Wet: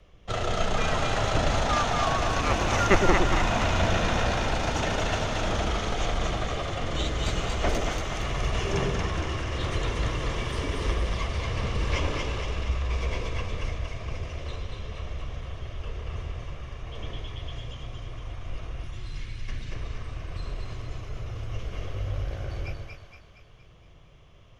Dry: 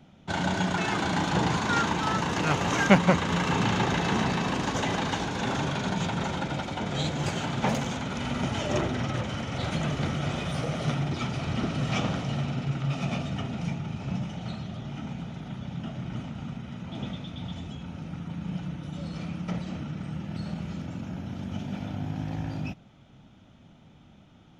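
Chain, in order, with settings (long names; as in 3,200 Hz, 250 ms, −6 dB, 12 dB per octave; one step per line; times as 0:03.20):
0:18.84–0:19.72: flat-topped bell 850 Hz −10.5 dB
frequency shifter −200 Hz
echo with a time of its own for lows and highs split 700 Hz, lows 112 ms, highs 233 ms, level −3.5 dB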